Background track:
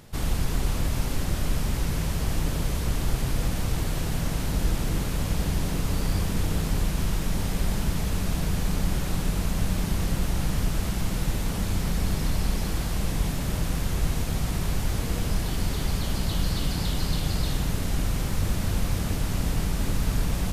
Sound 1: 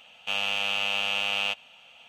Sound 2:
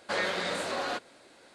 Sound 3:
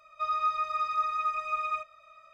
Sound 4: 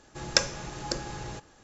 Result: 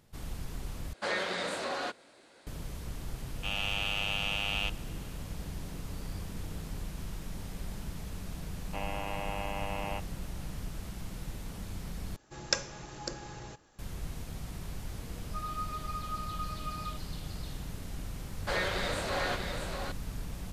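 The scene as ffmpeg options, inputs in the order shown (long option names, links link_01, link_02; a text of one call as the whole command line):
ffmpeg -i bed.wav -i cue0.wav -i cue1.wav -i cue2.wav -i cue3.wav -filter_complex "[2:a]asplit=2[link_01][link_02];[1:a]asplit=2[link_03][link_04];[0:a]volume=-14dB[link_05];[link_03]dynaudnorm=framelen=110:gausssize=5:maxgain=8.5dB[link_06];[link_04]lowpass=frequency=2900:width_type=q:width=0.5098,lowpass=frequency=2900:width_type=q:width=0.6013,lowpass=frequency=2900:width_type=q:width=0.9,lowpass=frequency=2900:width_type=q:width=2.563,afreqshift=-3400[link_07];[3:a]aecho=1:1:5:0.72[link_08];[link_02]aecho=1:1:642:0.562[link_09];[link_05]asplit=3[link_10][link_11][link_12];[link_10]atrim=end=0.934[link_13];[link_01]atrim=end=1.54,asetpts=PTS-STARTPTS,volume=-2.5dB[link_14];[link_11]atrim=start=2.466:end=12.164[link_15];[4:a]atrim=end=1.63,asetpts=PTS-STARTPTS,volume=-6.5dB[link_16];[link_12]atrim=start=13.786[link_17];[link_06]atrim=end=2.08,asetpts=PTS-STARTPTS,volume=-14dB,afade=type=in:duration=0.004:curve=hsin,afade=type=out:start_time=2.076:duration=0.004:curve=hsin,adelay=3160[link_18];[link_07]atrim=end=2.08,asetpts=PTS-STARTPTS,volume=-8dB,afade=type=in:duration=0.004:curve=hsin,afade=type=out:start_time=2.076:duration=0.004:curve=hsin,adelay=8460[link_19];[link_08]atrim=end=2.33,asetpts=PTS-STARTPTS,volume=-13dB,afade=type=in:duration=0.004:curve=hsin,afade=type=out:start_time=2.326:duration=0.004:curve=hsin,adelay=15140[link_20];[link_09]atrim=end=1.54,asetpts=PTS-STARTPTS,volume=-2dB,afade=type=in:duration=0.004:curve=hsin,afade=type=out:start_time=1.536:duration=0.004:curve=hsin,adelay=18380[link_21];[link_13][link_14]acrossfade=duration=0.004:curve1=hsin:curve2=hsin[link_22];[link_22][link_15]acrossfade=duration=0.004:curve1=hsin:curve2=hsin[link_23];[link_23][link_16]acrossfade=duration=0.004:curve1=hsin:curve2=hsin[link_24];[link_24][link_17]acrossfade=duration=0.004:curve1=hsin:curve2=hsin[link_25];[link_25][link_18][link_19][link_20][link_21]amix=inputs=5:normalize=0" out.wav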